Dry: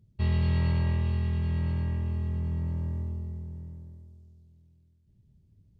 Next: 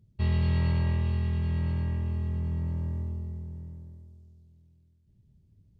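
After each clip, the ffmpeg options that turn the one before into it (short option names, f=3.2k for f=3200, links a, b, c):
-af anull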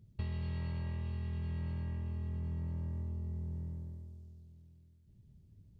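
-af "acompressor=threshold=-36dB:ratio=10,volume=1dB"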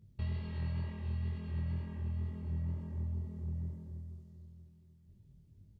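-af "flanger=delay=19.5:depth=6.2:speed=2.1,aecho=1:1:707|1414|2121:0.15|0.0464|0.0144,volume=2.5dB"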